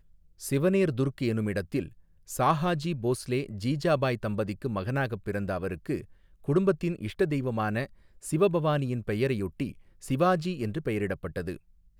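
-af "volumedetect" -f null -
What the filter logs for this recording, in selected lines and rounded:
mean_volume: -28.9 dB
max_volume: -11.3 dB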